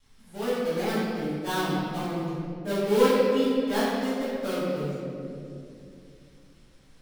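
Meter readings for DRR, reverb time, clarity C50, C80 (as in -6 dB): -14.5 dB, 2.7 s, -3.0 dB, -1.5 dB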